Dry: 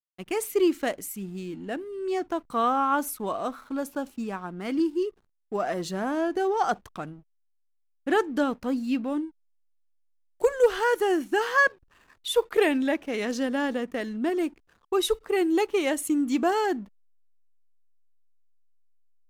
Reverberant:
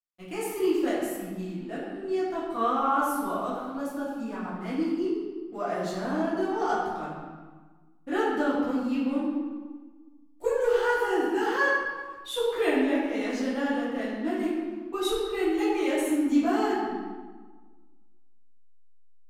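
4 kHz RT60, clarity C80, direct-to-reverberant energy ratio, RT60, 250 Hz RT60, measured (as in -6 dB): 1.0 s, 1.5 dB, -12.0 dB, 1.4 s, 1.7 s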